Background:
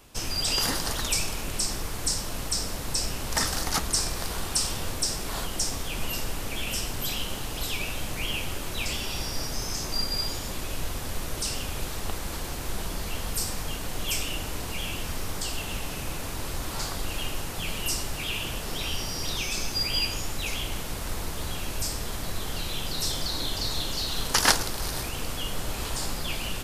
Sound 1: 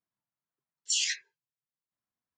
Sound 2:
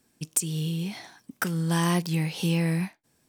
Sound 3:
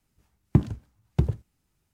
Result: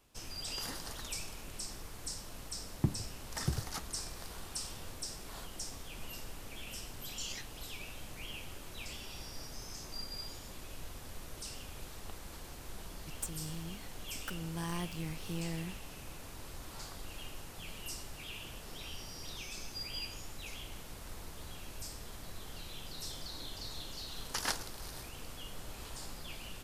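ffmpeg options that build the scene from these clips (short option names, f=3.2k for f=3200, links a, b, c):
-filter_complex "[0:a]volume=-14.5dB[a];[2:a]aeval=exprs='if(lt(val(0),0),0.447*val(0),val(0))':c=same[b];[3:a]atrim=end=1.93,asetpts=PTS-STARTPTS,volume=-11.5dB,afade=t=in:d=0.004:c=hsin,afade=t=out:st=1.926:d=0.004:c=hsin,adelay=2290[c];[1:a]atrim=end=2.37,asetpts=PTS-STARTPTS,volume=-14.5dB,afade=t=in:d=0.004:c=hsin,afade=t=out:st=2.366:d=0.004:c=hsin,adelay=6280[d];[b]atrim=end=3.28,asetpts=PTS-STARTPTS,volume=-12.5dB,afade=t=in:d=0.004:c=hsin,afade=t=out:st=3.276:d=0.004:c=hsin,adelay=12860[e];[a][c][d][e]amix=inputs=4:normalize=0"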